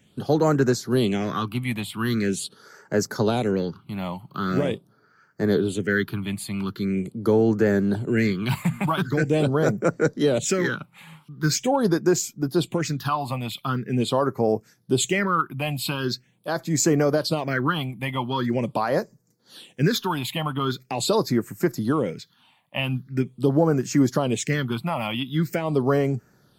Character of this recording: phasing stages 6, 0.43 Hz, lowest notch 400–3400 Hz

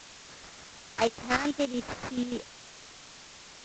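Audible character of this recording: aliases and images of a low sample rate 3.4 kHz, jitter 20%; chopped level 6.9 Hz, depth 65%, duty 40%; a quantiser's noise floor 8-bit, dither triangular; G.722

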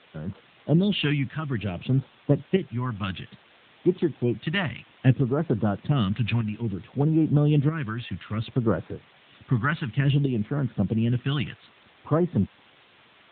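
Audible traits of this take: phasing stages 2, 0.59 Hz, lowest notch 440–2700 Hz; tremolo saw up 0.78 Hz, depth 55%; a quantiser's noise floor 8-bit, dither triangular; AMR-NB

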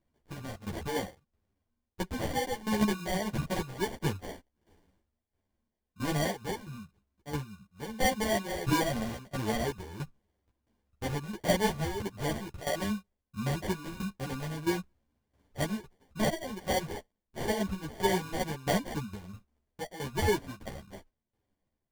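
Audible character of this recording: aliases and images of a low sample rate 1.3 kHz, jitter 0%; tremolo saw down 1.5 Hz, depth 80%; a shimmering, thickened sound

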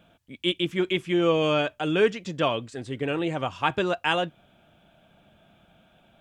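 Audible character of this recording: noise floor -61 dBFS; spectral tilt -3.5 dB/octave

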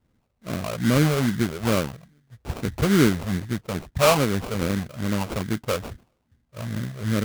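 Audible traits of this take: phasing stages 12, 2.4 Hz, lowest notch 260–1100 Hz; aliases and images of a low sample rate 1.8 kHz, jitter 20%

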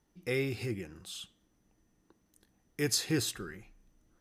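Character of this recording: noise floor -73 dBFS; spectral tilt -3.5 dB/octave

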